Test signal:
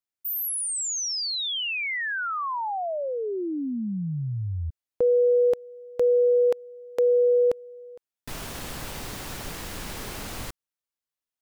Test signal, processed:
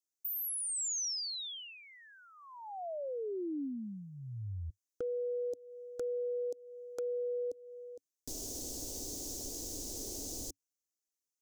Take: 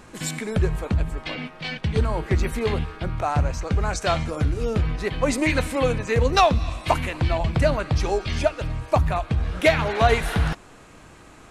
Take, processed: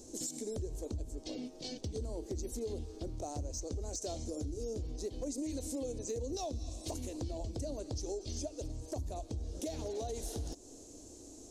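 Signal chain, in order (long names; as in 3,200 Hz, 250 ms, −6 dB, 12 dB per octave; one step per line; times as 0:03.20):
drawn EQ curve 100 Hz 0 dB, 160 Hz −13 dB, 280 Hz +8 dB, 460 Hz +4 dB, 680 Hz −2 dB, 1,300 Hz −23 dB, 2,300 Hz −19 dB, 6,300 Hz +15 dB, 9,500 Hz +6 dB
brickwall limiter −14.5 dBFS
downward compressor 3 to 1, threshold −31 dBFS
hard clipping −23.5 dBFS
level −7.5 dB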